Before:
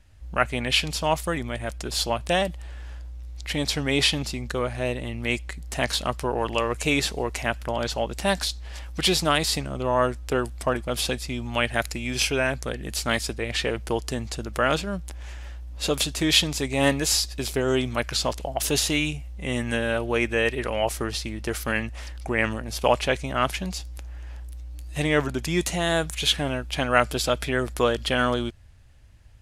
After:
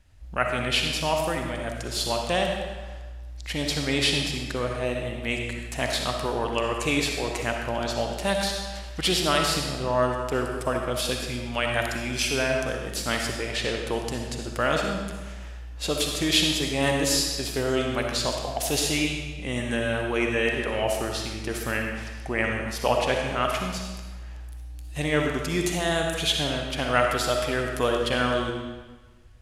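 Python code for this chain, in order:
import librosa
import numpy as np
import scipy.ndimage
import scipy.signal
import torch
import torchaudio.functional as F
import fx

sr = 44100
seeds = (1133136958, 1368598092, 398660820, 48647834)

y = fx.rev_freeverb(x, sr, rt60_s=1.3, hf_ratio=0.9, predelay_ms=20, drr_db=1.5)
y = y * librosa.db_to_amplitude(-3.0)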